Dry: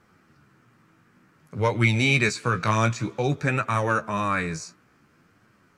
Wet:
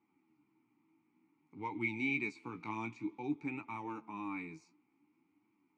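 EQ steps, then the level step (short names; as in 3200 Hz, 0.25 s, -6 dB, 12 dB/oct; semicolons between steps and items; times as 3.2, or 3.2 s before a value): vowel filter u; high shelf 5500 Hz +5.5 dB; -3.5 dB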